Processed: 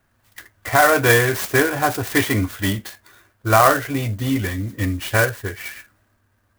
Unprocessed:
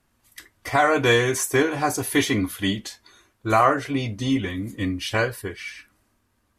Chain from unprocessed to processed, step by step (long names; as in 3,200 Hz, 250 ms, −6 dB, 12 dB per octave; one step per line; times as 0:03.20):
graphic EQ with 15 bands 100 Hz +9 dB, 630 Hz +5 dB, 1,600 Hz +8 dB
converter with an unsteady clock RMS 0.04 ms